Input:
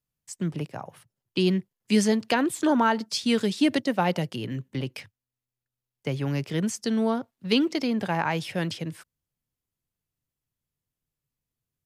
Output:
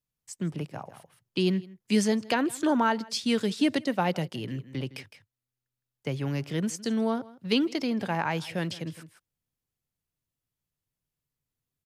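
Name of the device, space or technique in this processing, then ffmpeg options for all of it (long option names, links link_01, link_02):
ducked delay: -filter_complex "[0:a]asplit=3[link_01][link_02][link_03];[link_02]adelay=161,volume=-4dB[link_04];[link_03]apad=whole_len=529883[link_05];[link_04][link_05]sidechaincompress=threshold=-40dB:ratio=16:attack=27:release=526[link_06];[link_01][link_06]amix=inputs=2:normalize=0,volume=-2.5dB"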